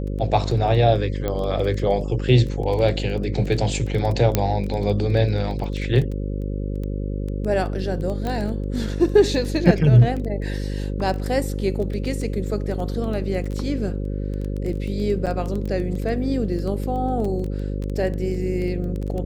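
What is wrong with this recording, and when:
mains buzz 50 Hz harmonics 11 −26 dBFS
surface crackle 11 per second −26 dBFS
0:01.28: click −12 dBFS
0:04.35: click −3 dBFS
0:08.27: click −15 dBFS
0:15.26–0:15.27: drop-out 7.9 ms

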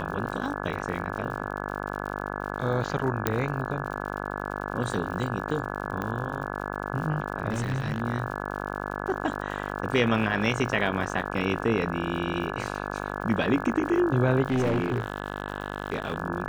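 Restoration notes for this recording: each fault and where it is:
mains buzz 50 Hz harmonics 34 −33 dBFS
surface crackle 97 per second −37 dBFS
0:03.27: click −8 dBFS
0:06.02: click −18 dBFS
0:07.50–0:08.02: clipping −23.5 dBFS
0:14.46–0:16.16: clipping −21 dBFS

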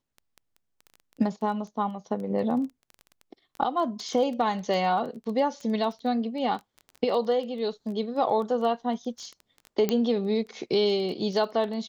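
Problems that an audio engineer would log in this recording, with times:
surface crackle 11 per second −33 dBFS
0:09.89: click −11 dBFS

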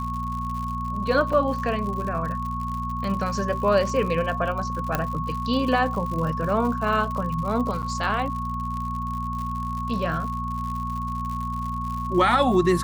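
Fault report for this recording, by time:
surface crackle 100 per second −31 dBFS
mains hum 60 Hz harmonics 4 −31 dBFS
whistle 1,100 Hz −29 dBFS
0:01.33: drop-out 3.4 ms
0:04.95: click −9 dBFS
0:07.82–0:07.83: drop-out 8.7 ms

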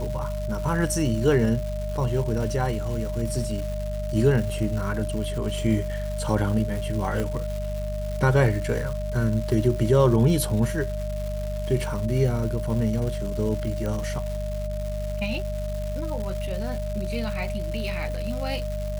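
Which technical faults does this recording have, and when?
surface crackle 380 per second −32 dBFS
mains hum 50 Hz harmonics 4 −30 dBFS
whistle 610 Hz −32 dBFS
0:07.20: click −16 dBFS
0:13.86: click −18 dBFS

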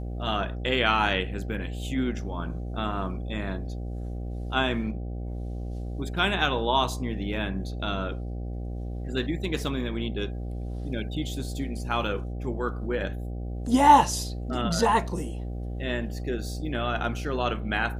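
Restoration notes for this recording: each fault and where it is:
mains buzz 60 Hz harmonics 13 −33 dBFS

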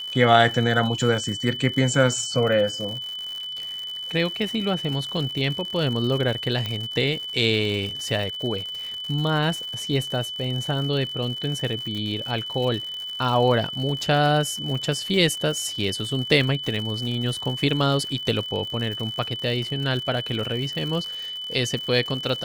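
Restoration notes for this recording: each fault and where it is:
surface crackle 120 per second −30 dBFS
whistle 3,000 Hz −30 dBFS
0:06.66: click −14 dBFS

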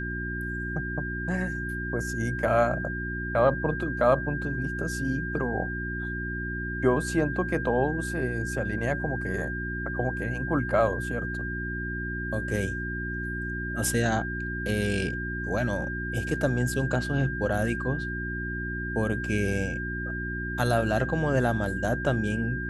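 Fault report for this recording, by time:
mains hum 60 Hz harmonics 6 −34 dBFS
whistle 1,600 Hz −33 dBFS

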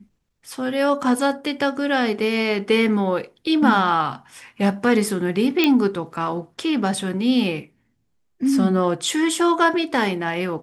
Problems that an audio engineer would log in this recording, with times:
0:05.64: click −5 dBFS

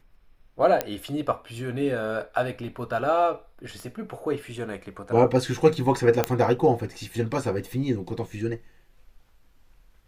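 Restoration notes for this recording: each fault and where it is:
0:00.81: click −9 dBFS
0:03.80: click −27 dBFS
0:06.24: click −7 dBFS

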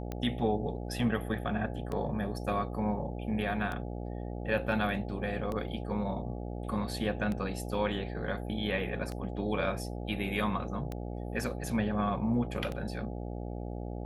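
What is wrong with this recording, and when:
mains buzz 60 Hz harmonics 14 −38 dBFS
scratch tick 33 1/3 rpm −23 dBFS

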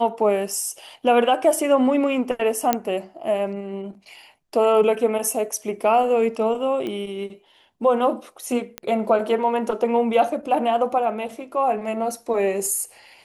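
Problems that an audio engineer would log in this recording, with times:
0:02.73: click −4 dBFS
0:06.87: click −18 dBFS
0:08.78: click −12 dBFS

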